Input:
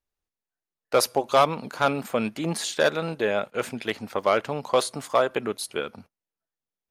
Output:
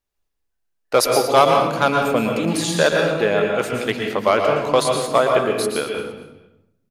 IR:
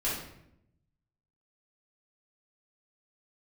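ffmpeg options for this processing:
-filter_complex "[0:a]aecho=1:1:231|462:0.158|0.0365,asplit=2[link_01][link_02];[1:a]atrim=start_sample=2205,adelay=112[link_03];[link_02][link_03]afir=irnorm=-1:irlink=0,volume=-9dB[link_04];[link_01][link_04]amix=inputs=2:normalize=0,volume=4.5dB"

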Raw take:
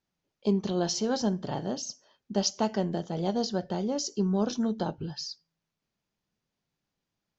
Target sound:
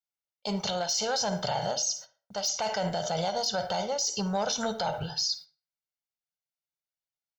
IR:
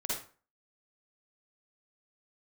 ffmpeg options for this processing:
-filter_complex "[0:a]agate=range=-32dB:threshold=-52dB:ratio=16:detection=peak,aecho=1:1:1.4:0.7,asoftclip=type=tanh:threshold=-18dB,crystalizer=i=8.5:c=0,areverse,acompressor=threshold=-26dB:ratio=6,areverse,equalizer=frequency=125:width_type=o:width=1:gain=5,equalizer=frequency=250:width_type=o:width=1:gain=-10,equalizer=frequency=500:width_type=o:width=1:gain=7,equalizer=frequency=1000:width_type=o:width=1:gain=8,equalizer=frequency=2000:width_type=o:width=1:gain=4,equalizer=frequency=4000:width_type=o:width=1:gain=3,asplit=2[link_01][link_02];[1:a]atrim=start_sample=2205,lowpass=3200[link_03];[link_02][link_03]afir=irnorm=-1:irlink=0,volume=-15dB[link_04];[link_01][link_04]amix=inputs=2:normalize=0,alimiter=limit=-20dB:level=0:latency=1:release=47"

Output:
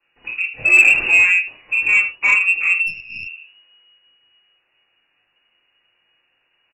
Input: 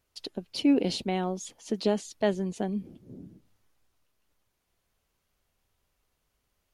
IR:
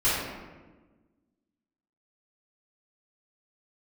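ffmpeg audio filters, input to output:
-filter_complex "[0:a]asettb=1/sr,asplit=3[link_01][link_02][link_03];[link_01]atrim=end=0.644[link_04];[link_02]atrim=start=0.64:end=1.08,asetpts=PTS-STARTPTS,afade=type=in:duration=0.004:curve=qsin,afade=type=out:start_time=0.436:duration=0.004:curve=qsin,aeval=exprs='val(0)+0.5*0.0282*sgn(val(0))':channel_layout=same[link_05];[link_03]atrim=start=1.076[link_06];[link_04][link_05]acrossfade=duration=0.004:curve1=hsin:curve2=qsin[link_07];[link_07][link_06]acrossfade=duration=0.004:curve1=qsin:curve2=hsin,lowshelf=frequency=110:width_type=q:width=1.5:gain=-13,asplit=2[link_08][link_09];[link_09]adelay=24,volume=-11dB[link_10];[link_08][link_10]amix=inputs=2:normalize=0,aecho=1:1:78:0.237[link_11];[1:a]atrim=start_sample=2205,atrim=end_sample=3969[link_12];[link_11][link_12]afir=irnorm=-1:irlink=0,lowpass=frequency=2500:width_type=q:width=0.5098,lowpass=frequency=2500:width_type=q:width=0.6013,lowpass=frequency=2500:width_type=q:width=0.9,lowpass=frequency=2500:width_type=q:width=2.563,afreqshift=-2900,acontrast=22,asplit=3[link_13][link_14][link_15];[link_13]afade=type=out:start_time=2.86:duration=0.02[link_16];[link_14]aeval=exprs='0.211*(cos(1*acos(clip(val(0)/0.211,-1,1)))-cos(1*PI/2))+0.0237*(cos(4*acos(clip(val(0)/0.211,-1,1)))-cos(4*PI/2))':channel_layout=same,afade=type=in:start_time=2.86:duration=0.02,afade=type=out:start_time=3.26:duration=0.02[link_17];[link_15]afade=type=in:start_time=3.26:duration=0.02[link_18];[link_16][link_17][link_18]amix=inputs=3:normalize=0,volume=-3.5dB"

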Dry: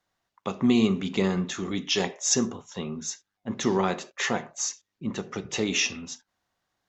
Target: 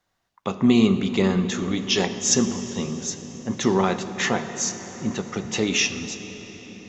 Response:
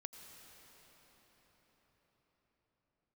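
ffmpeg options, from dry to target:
-filter_complex "[0:a]asplit=2[link_01][link_02];[1:a]atrim=start_sample=2205,lowshelf=frequency=150:gain=7[link_03];[link_02][link_03]afir=irnorm=-1:irlink=0,volume=4.5dB[link_04];[link_01][link_04]amix=inputs=2:normalize=0,volume=-2dB"

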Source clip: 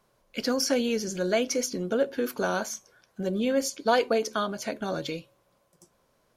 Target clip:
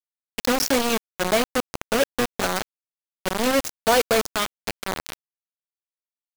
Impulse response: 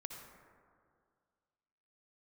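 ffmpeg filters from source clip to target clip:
-filter_complex "[0:a]asplit=3[link_01][link_02][link_03];[link_01]afade=type=out:start_time=0.96:duration=0.02[link_04];[link_02]highshelf=frequency=3500:gain=-8,afade=type=in:start_time=0.96:duration=0.02,afade=type=out:start_time=1.75:duration=0.02[link_05];[link_03]afade=type=in:start_time=1.75:duration=0.02[link_06];[link_04][link_05][link_06]amix=inputs=3:normalize=0,acrusher=bits=3:mix=0:aa=0.000001,volume=3dB"

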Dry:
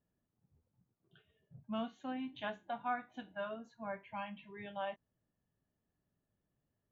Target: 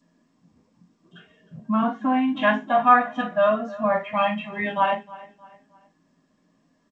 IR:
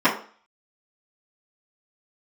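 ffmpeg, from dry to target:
-filter_complex "[0:a]asplit=3[link_01][link_02][link_03];[link_01]afade=type=out:start_time=1.55:duration=0.02[link_04];[link_02]highshelf=frequency=2100:width_type=q:width=1.5:gain=-8.5,afade=type=in:start_time=1.55:duration=0.02,afade=type=out:start_time=2.12:duration=0.02[link_05];[link_03]afade=type=in:start_time=2.12:duration=0.02[link_06];[link_04][link_05][link_06]amix=inputs=3:normalize=0,asplit=3[link_07][link_08][link_09];[link_07]afade=type=out:start_time=2.73:duration=0.02[link_10];[link_08]aecho=1:1:1.6:0.68,afade=type=in:start_time=2.73:duration=0.02,afade=type=out:start_time=4.63:duration=0.02[link_11];[link_09]afade=type=in:start_time=4.63:duration=0.02[link_12];[link_10][link_11][link_12]amix=inputs=3:normalize=0,asplit=2[link_13][link_14];[link_14]adelay=311,lowpass=frequency=4000:poles=1,volume=-19.5dB,asplit=2[link_15][link_16];[link_16]adelay=311,lowpass=frequency=4000:poles=1,volume=0.4,asplit=2[link_17][link_18];[link_18]adelay=311,lowpass=frequency=4000:poles=1,volume=0.4[link_19];[link_13][link_15][link_17][link_19]amix=inputs=4:normalize=0[link_20];[1:a]atrim=start_sample=2205,atrim=end_sample=3528[link_21];[link_20][link_21]afir=irnorm=-1:irlink=0,acrossover=split=680[link_22][link_23];[link_22]alimiter=limit=-18.5dB:level=0:latency=1:release=11[link_24];[link_23]aemphasis=mode=production:type=cd[link_25];[link_24][link_25]amix=inputs=2:normalize=0" -ar 16000 -c:a g722

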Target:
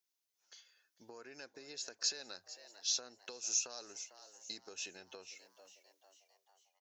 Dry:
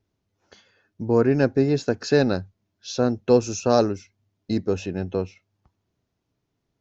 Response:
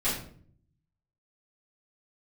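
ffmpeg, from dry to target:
-filter_complex "[0:a]dynaudnorm=framelen=230:gausssize=9:maxgain=11.5dB,alimiter=limit=-9.5dB:level=0:latency=1:release=150,bass=frequency=250:gain=-7,treble=frequency=4000:gain=2,asplit=5[link_01][link_02][link_03][link_04][link_05];[link_02]adelay=448,afreqshift=100,volume=-19.5dB[link_06];[link_03]adelay=896,afreqshift=200,volume=-25.3dB[link_07];[link_04]adelay=1344,afreqshift=300,volume=-31.2dB[link_08];[link_05]adelay=1792,afreqshift=400,volume=-37dB[link_09];[link_01][link_06][link_07][link_08][link_09]amix=inputs=5:normalize=0,acompressor=threshold=-26dB:ratio=6,aderivative"

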